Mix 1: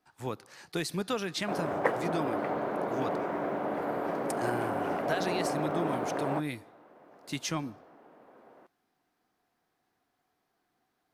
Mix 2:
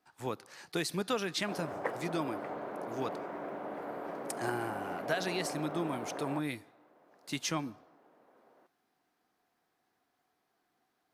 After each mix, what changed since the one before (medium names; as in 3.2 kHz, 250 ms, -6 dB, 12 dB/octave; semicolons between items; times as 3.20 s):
background -7.5 dB; master: add bass shelf 130 Hz -7.5 dB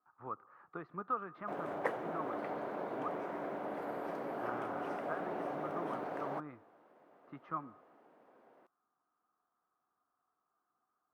speech: add four-pole ladder low-pass 1.3 kHz, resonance 80%